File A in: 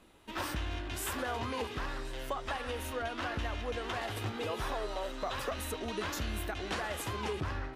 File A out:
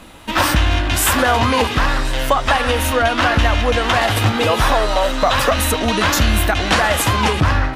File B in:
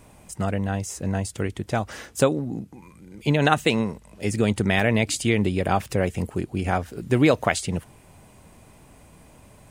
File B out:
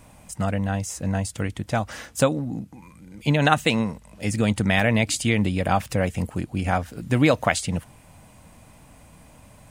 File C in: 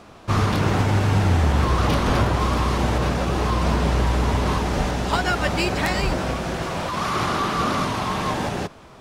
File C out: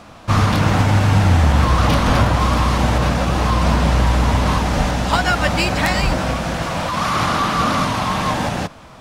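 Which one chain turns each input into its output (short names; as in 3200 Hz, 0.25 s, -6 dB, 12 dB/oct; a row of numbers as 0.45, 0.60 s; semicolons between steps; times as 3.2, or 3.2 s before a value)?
bell 390 Hz -12 dB 0.29 oct; normalise peaks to -3 dBFS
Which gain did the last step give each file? +21.5, +1.5, +5.0 dB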